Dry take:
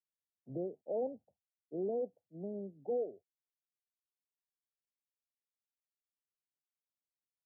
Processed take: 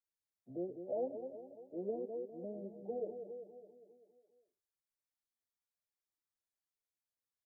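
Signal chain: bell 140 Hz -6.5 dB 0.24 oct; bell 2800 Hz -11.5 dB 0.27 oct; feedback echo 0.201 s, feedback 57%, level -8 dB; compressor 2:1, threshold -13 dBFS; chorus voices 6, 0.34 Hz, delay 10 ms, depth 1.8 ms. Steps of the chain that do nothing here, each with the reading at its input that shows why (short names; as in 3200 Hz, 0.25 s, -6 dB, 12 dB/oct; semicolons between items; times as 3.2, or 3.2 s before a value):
bell 2800 Hz: input band ends at 760 Hz; compressor, threshold -13 dBFS: input peak -27.0 dBFS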